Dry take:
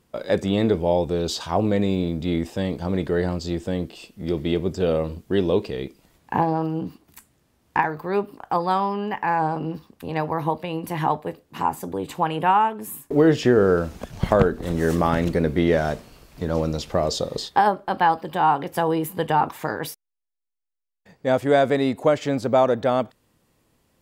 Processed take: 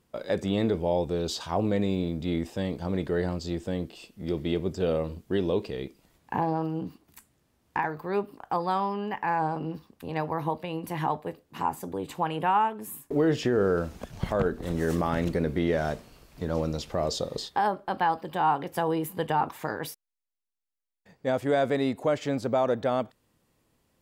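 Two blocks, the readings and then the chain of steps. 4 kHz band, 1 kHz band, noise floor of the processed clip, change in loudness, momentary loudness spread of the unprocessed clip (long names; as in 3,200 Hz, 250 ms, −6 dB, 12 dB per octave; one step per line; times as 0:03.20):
−5.5 dB, −6.0 dB, −72 dBFS, −6.0 dB, 11 LU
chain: brickwall limiter −10 dBFS, peak gain reduction 6.5 dB
level −5 dB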